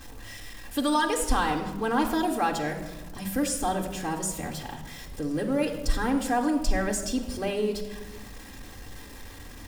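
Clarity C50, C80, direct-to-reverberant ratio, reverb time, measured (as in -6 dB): 8.0 dB, 10.0 dB, -2.0 dB, 1.2 s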